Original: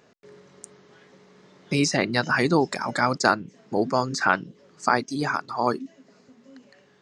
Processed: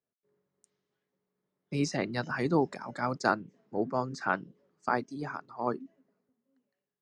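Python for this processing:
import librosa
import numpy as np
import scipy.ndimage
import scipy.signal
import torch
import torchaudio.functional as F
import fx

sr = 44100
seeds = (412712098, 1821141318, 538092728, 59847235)

y = fx.high_shelf(x, sr, hz=2100.0, db=-11.0)
y = fx.band_widen(y, sr, depth_pct=70)
y = y * librosa.db_to_amplitude(-7.5)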